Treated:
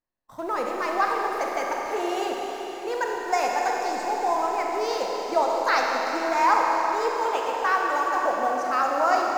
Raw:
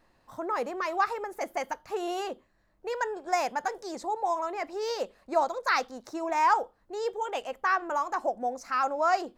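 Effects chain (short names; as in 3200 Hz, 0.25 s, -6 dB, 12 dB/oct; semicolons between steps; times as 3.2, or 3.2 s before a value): in parallel at -11.5 dB: sample gate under -33 dBFS; on the sum: gate -54 dBFS, range -27 dB; reverb RT60 4.9 s, pre-delay 31 ms, DRR -1.5 dB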